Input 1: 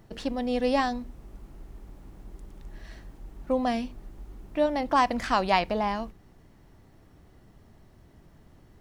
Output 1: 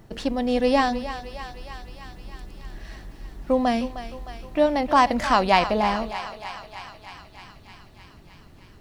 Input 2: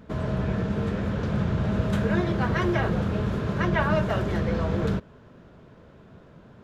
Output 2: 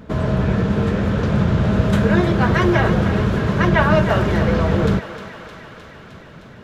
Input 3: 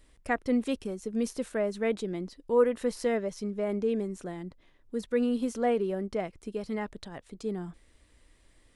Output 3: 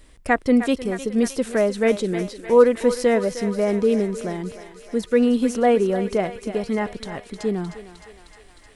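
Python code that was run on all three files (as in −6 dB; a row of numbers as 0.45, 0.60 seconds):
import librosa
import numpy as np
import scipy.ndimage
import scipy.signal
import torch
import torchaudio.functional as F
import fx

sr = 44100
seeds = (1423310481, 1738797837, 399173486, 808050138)

y = fx.echo_thinned(x, sr, ms=308, feedback_pct=76, hz=580.0, wet_db=-10.5)
y = y * 10.0 ** (-3 / 20.0) / np.max(np.abs(y))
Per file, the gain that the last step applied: +5.0, +8.5, +9.5 decibels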